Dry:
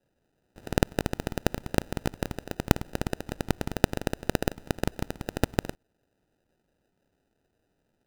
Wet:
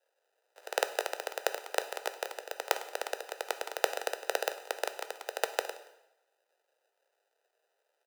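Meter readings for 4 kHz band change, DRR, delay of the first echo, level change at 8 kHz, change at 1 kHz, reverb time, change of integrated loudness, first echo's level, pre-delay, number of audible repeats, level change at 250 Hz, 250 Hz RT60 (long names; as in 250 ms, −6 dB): +0.5 dB, 9.5 dB, 176 ms, +0.5 dB, +0.5 dB, 0.90 s, −4.0 dB, −24.0 dB, 4 ms, 1, −24.0 dB, 0.90 s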